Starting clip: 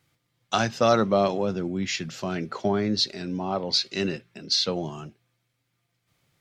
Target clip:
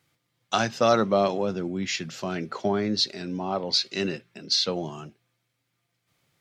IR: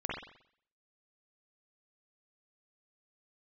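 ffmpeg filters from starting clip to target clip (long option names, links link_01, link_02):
-af "lowshelf=frequency=93:gain=-8.5"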